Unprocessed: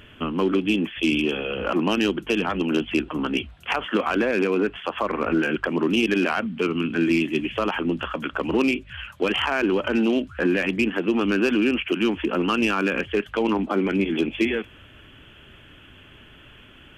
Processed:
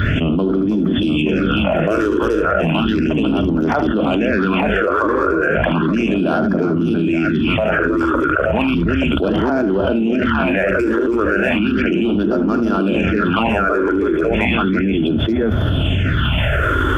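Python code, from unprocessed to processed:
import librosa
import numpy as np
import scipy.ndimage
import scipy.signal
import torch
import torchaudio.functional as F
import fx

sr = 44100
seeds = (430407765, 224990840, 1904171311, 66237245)

p1 = scipy.signal.sosfilt(scipy.signal.butter(2, 55.0, 'highpass', fs=sr, output='sos'), x)
p2 = fx.bass_treble(p1, sr, bass_db=10, treble_db=-7)
p3 = fx.hum_notches(p2, sr, base_hz=60, count=4)
p4 = fx.small_body(p3, sr, hz=(640.0, 1400.0, 3500.0), ring_ms=25, db=10)
p5 = p4 + fx.echo_multitap(p4, sr, ms=(42, 76, 325, 877), db=(-12.0, -10.0, -10.5, -4.5), dry=0)
p6 = fx.phaser_stages(p5, sr, stages=6, low_hz=180.0, high_hz=2700.0, hz=0.34, feedback_pct=25)
p7 = fx.env_flatten(p6, sr, amount_pct=100)
y = p7 * 10.0 ** (-4.0 / 20.0)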